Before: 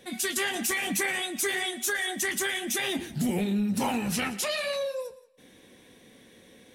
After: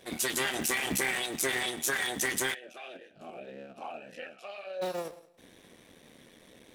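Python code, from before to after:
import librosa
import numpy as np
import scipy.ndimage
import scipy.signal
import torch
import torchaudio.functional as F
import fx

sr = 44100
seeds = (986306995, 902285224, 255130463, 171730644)

y = fx.cycle_switch(x, sr, every=3, mode='muted')
y = fx.echo_feedback(y, sr, ms=100, feedback_pct=36, wet_db=-21.5)
y = fx.vowel_sweep(y, sr, vowels='a-e', hz=fx.line((2.53, 2.5), (4.81, 1.2)), at=(2.53, 4.81), fade=0.02)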